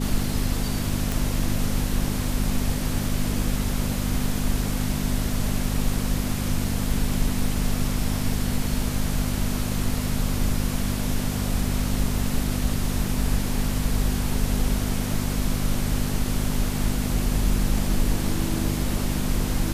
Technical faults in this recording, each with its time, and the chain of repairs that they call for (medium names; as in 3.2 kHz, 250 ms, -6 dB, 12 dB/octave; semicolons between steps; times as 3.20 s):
hum 50 Hz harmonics 5 -28 dBFS
1.12 s: pop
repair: de-click; de-hum 50 Hz, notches 5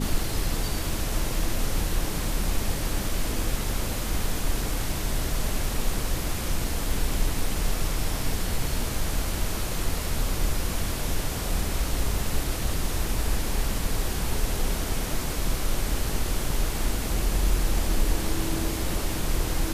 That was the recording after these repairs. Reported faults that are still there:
nothing left